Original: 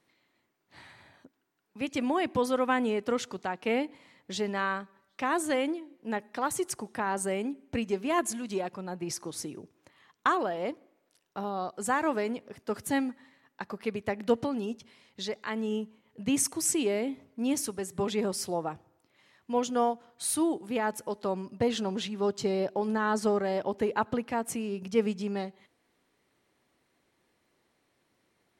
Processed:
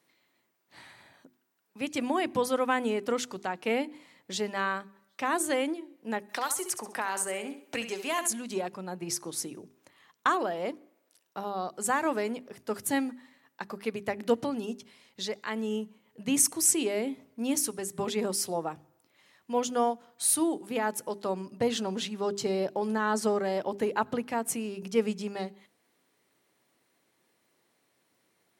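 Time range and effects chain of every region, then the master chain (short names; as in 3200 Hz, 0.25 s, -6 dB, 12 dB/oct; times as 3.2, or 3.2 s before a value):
6.29–8.28 bell 160 Hz -12.5 dB 2.9 oct + flutter echo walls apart 11.4 m, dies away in 0.38 s + three-band squash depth 70%
whole clip: HPF 120 Hz; high shelf 7600 Hz +9 dB; notches 50/100/150/200/250/300/350/400 Hz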